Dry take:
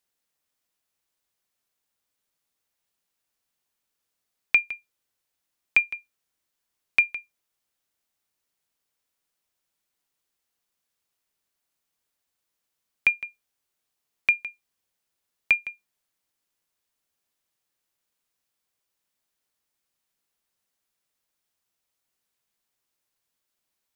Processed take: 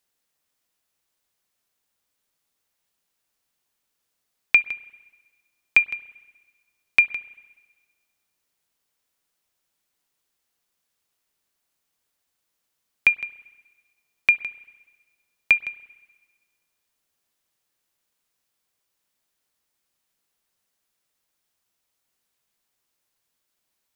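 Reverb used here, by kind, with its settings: spring tank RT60 1.4 s, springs 32/58 ms, chirp 70 ms, DRR 18.5 dB; gain +3.5 dB

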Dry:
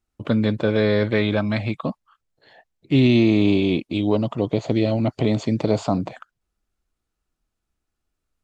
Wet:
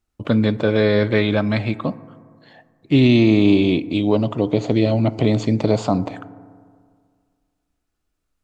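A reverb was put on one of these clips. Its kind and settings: FDN reverb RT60 2 s, low-frequency decay 1×, high-frequency decay 0.3×, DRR 15.5 dB; gain +2.5 dB

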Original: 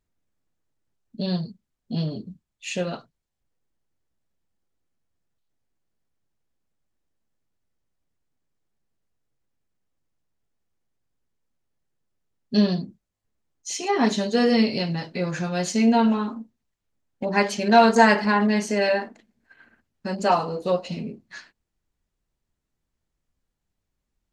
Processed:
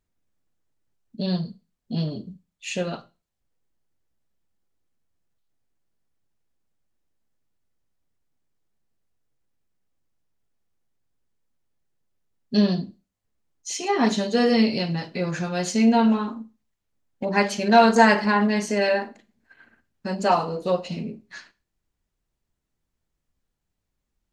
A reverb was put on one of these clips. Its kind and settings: Schroeder reverb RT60 0.31 s, combs from 32 ms, DRR 16.5 dB

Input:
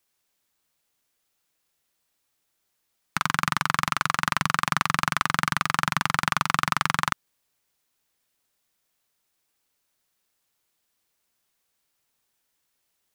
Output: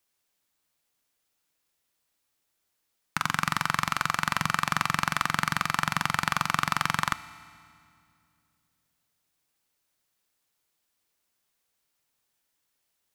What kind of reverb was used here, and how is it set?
FDN reverb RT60 2.3 s, low-frequency decay 1.45×, high-frequency decay 0.9×, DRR 13.5 dB; gain -2.5 dB

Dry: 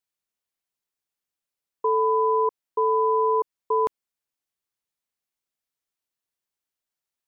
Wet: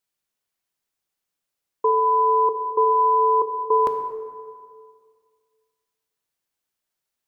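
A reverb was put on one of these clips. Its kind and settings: plate-style reverb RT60 2 s, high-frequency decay 0.5×, DRR 5.5 dB; gain +4 dB

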